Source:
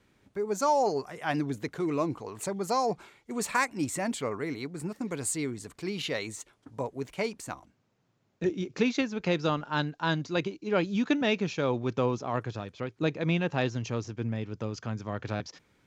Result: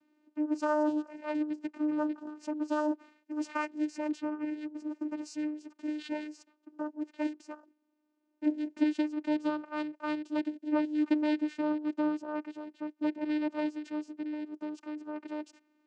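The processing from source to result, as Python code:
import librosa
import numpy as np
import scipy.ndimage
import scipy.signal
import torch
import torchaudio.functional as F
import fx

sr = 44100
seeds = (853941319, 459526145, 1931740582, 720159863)

y = fx.rattle_buzz(x, sr, strikes_db=-30.0, level_db=-30.0)
y = fx.vocoder(y, sr, bands=8, carrier='saw', carrier_hz=302.0)
y = y * librosa.db_to_amplitude(-2.0)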